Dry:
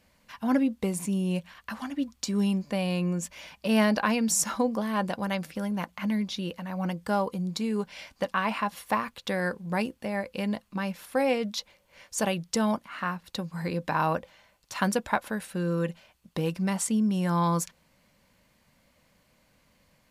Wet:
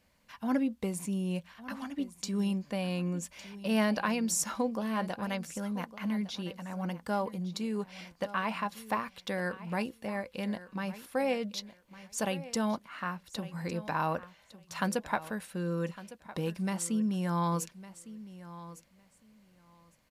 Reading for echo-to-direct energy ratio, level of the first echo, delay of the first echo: -16.0 dB, -16.0 dB, 1157 ms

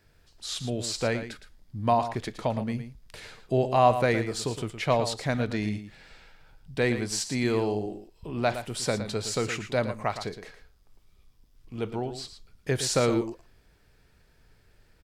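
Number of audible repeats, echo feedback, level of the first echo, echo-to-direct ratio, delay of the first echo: 1, no regular repeats, -10.5 dB, -10.5 dB, 114 ms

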